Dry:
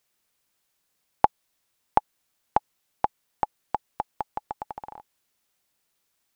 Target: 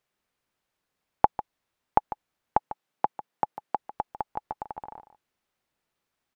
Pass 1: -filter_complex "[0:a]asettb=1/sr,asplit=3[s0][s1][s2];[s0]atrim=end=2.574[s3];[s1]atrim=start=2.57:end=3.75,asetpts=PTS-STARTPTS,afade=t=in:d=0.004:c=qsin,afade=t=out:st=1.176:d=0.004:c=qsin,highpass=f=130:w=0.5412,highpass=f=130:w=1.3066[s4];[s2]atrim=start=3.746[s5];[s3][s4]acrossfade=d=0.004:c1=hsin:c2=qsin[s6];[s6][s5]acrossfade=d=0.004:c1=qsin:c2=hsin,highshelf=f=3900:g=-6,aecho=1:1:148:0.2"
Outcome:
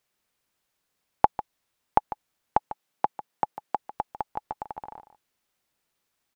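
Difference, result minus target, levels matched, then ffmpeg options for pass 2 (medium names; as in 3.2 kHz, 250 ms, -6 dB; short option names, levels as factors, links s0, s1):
4 kHz band +3.0 dB
-filter_complex "[0:a]asettb=1/sr,asplit=3[s0][s1][s2];[s0]atrim=end=2.574[s3];[s1]atrim=start=2.57:end=3.75,asetpts=PTS-STARTPTS,afade=t=in:d=0.004:c=qsin,afade=t=out:st=1.176:d=0.004:c=qsin,highpass=f=130:w=0.5412,highpass=f=130:w=1.3066[s4];[s2]atrim=start=3.746[s5];[s3][s4]acrossfade=d=0.004:c1=hsin:c2=qsin[s6];[s6][s5]acrossfade=d=0.004:c1=qsin:c2=hsin,highshelf=f=3900:g=-14.5,aecho=1:1:148:0.2"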